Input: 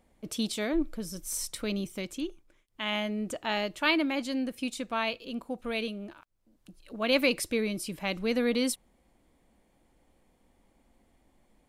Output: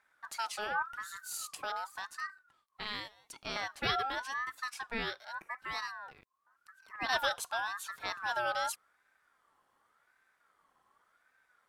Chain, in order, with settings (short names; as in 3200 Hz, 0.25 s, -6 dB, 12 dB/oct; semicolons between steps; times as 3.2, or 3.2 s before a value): 2.84–3.56 inverse Chebyshev high-pass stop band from 190 Hz, stop band 70 dB; ring modulator with a swept carrier 1300 Hz, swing 20%, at 0.88 Hz; gain -3.5 dB